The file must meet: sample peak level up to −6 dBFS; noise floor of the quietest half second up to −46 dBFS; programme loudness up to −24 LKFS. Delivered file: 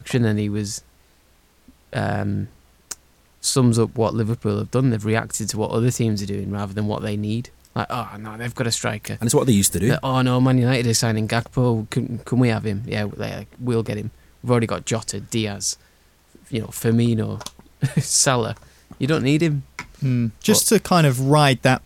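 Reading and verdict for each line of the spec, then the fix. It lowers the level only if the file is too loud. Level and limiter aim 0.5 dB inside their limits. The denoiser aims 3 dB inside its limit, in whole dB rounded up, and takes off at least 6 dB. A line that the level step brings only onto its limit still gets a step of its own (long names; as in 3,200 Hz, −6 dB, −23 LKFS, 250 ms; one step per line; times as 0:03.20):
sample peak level −4.5 dBFS: out of spec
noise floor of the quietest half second −57 dBFS: in spec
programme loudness −21.0 LKFS: out of spec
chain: level −3.5 dB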